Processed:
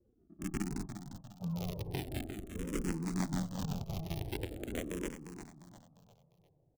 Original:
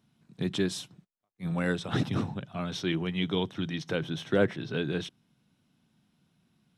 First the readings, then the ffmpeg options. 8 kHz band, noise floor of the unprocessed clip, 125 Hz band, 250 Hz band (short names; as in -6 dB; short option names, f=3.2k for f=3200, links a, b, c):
-1.0 dB, -74 dBFS, -6.0 dB, -7.0 dB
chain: -filter_complex "[0:a]equalizer=f=460:w=0.91:g=-11.5,acrossover=split=160|5300[a][b][c];[a]acompressor=threshold=-52dB:ratio=4[d];[b]acompressor=threshold=-36dB:ratio=4[e];[c]acompressor=threshold=-51dB:ratio=4[f];[d][e][f]amix=inputs=3:normalize=0,aexciter=amount=2.6:drive=2.2:freq=2.5k,aresample=16000,acrusher=samples=22:mix=1:aa=0.000001:lfo=1:lforange=22:lforate=0.56,aresample=44100,asoftclip=type=tanh:threshold=-23dB,acrossover=split=830[g][h];[h]acrusher=bits=5:mix=0:aa=0.000001[i];[g][i]amix=inputs=2:normalize=0,aecho=1:1:351|702|1053|1404:0.355|0.142|0.0568|0.0227,asplit=2[j][k];[k]afreqshift=-0.43[l];[j][l]amix=inputs=2:normalize=1,volume=3.5dB"